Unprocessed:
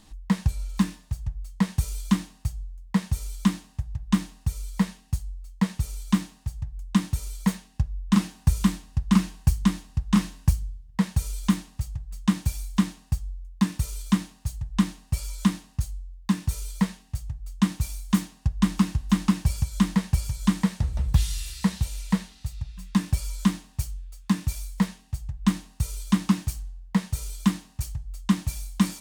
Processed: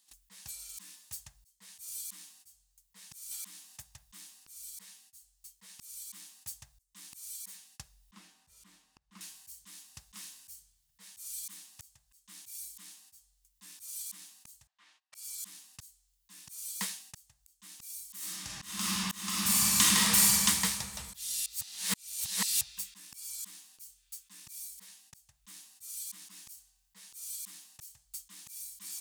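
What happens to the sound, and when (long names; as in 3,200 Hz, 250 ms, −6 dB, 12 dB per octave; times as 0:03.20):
0:03.31–0:03.82: multiband upward and downward compressor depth 40%
0:08.11–0:09.21: low-pass filter 1,200 Hz 6 dB per octave
0:14.67–0:15.15: band-pass filter 690–2,400 Hz
0:18.16–0:20.33: thrown reverb, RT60 2.6 s, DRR −6.5 dB
0:21.46–0:22.61: reverse
whole clip: noise gate −50 dBFS, range −21 dB; first difference; volume swells 670 ms; level +13.5 dB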